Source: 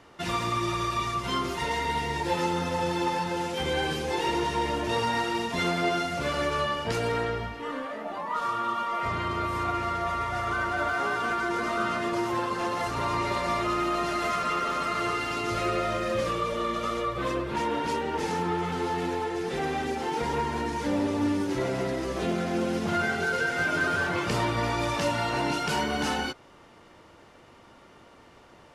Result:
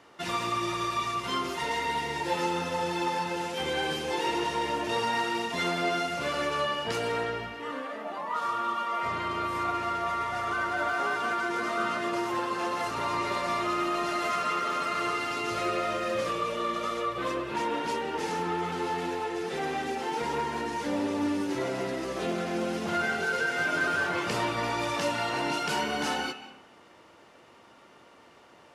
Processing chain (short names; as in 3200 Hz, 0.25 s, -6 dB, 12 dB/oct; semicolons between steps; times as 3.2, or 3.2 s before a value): HPF 240 Hz 6 dB/oct; on a send: bell 2700 Hz +15 dB 0.23 oct + reverb RT60 0.85 s, pre-delay 0.115 s, DRR 10 dB; on the sum: gain -1 dB